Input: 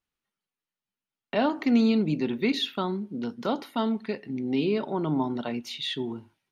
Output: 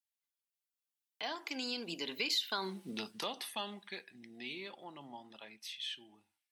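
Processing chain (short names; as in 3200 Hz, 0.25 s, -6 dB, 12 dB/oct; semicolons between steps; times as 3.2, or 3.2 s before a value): Doppler pass-by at 2.68, 32 m/s, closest 3 m; tilt +4.5 dB/oct; compressor 5:1, threshold -46 dBFS, peak gain reduction 17 dB; bell 220 Hz -4.5 dB 2.6 oct; notch 1300 Hz, Q 9; gain +13 dB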